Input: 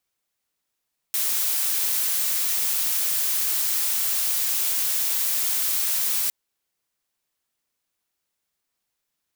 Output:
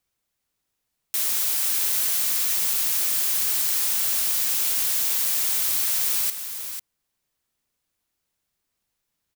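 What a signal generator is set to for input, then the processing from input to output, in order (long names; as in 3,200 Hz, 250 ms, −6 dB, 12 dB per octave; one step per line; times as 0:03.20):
noise blue, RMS −23.5 dBFS 5.16 s
low-shelf EQ 200 Hz +9 dB
on a send: single-tap delay 495 ms −9 dB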